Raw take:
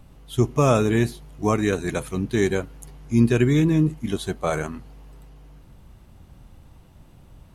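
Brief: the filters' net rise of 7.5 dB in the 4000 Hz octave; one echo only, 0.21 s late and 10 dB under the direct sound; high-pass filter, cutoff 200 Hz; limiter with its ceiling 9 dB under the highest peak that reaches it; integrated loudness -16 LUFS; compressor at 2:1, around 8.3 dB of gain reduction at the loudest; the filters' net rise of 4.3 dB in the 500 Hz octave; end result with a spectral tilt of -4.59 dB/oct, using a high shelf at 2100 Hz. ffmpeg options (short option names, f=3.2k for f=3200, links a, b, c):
-af "highpass=200,equalizer=f=500:t=o:g=5.5,highshelf=f=2.1k:g=6,equalizer=f=4k:t=o:g=3.5,acompressor=threshold=-27dB:ratio=2,alimiter=limit=-20dB:level=0:latency=1,aecho=1:1:210:0.316,volume=15dB"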